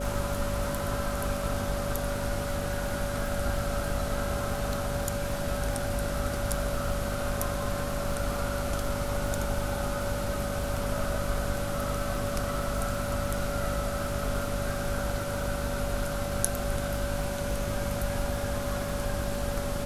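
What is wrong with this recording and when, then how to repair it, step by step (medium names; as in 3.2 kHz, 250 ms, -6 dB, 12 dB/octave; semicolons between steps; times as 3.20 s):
crackle 48 per s -35 dBFS
hum 50 Hz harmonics 5 -36 dBFS
whine 570 Hz -34 dBFS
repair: de-click; de-hum 50 Hz, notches 5; band-stop 570 Hz, Q 30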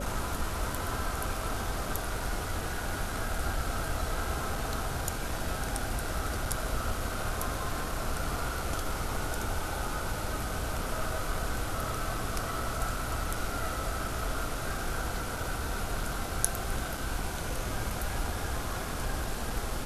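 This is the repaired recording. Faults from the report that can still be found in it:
nothing left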